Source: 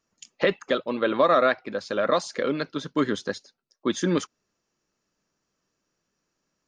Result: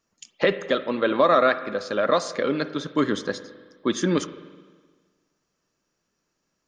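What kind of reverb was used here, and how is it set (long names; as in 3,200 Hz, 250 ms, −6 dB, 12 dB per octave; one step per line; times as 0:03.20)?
spring reverb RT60 1.5 s, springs 42/52 ms, chirp 40 ms, DRR 12.5 dB
level +1.5 dB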